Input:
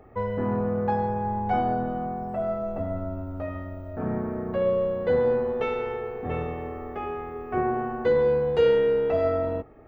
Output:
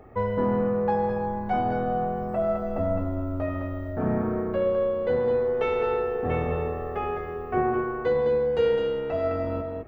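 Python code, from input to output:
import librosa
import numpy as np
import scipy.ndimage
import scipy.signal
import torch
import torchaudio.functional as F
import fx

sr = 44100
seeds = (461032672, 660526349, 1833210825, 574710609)

y = fx.rider(x, sr, range_db=3, speed_s=0.5)
y = y + 10.0 ** (-6.0 / 20.0) * np.pad(y, (int(209 * sr / 1000.0), 0))[:len(y)]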